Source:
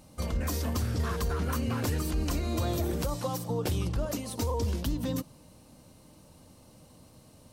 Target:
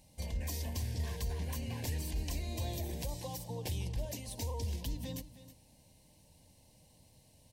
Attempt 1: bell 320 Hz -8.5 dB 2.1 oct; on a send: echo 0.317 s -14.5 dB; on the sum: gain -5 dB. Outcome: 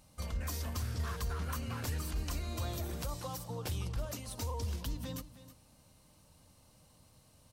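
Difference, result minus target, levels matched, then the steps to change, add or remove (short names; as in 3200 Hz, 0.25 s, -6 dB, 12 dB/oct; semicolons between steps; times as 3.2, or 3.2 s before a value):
1000 Hz band +4.0 dB
add first: Butterworth band-stop 1300 Hz, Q 1.6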